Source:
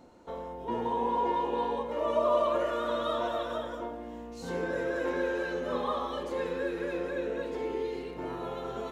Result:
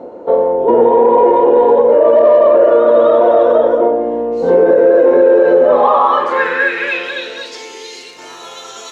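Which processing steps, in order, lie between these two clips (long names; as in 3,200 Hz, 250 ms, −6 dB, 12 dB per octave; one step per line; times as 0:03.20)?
band-pass filter sweep 500 Hz → 6,200 Hz, 0:05.50–0:07.67
in parallel at −8.5 dB: soft clipping −30.5 dBFS, distortion −13 dB
on the sum: boost into a limiter +28.5 dB
level −1 dB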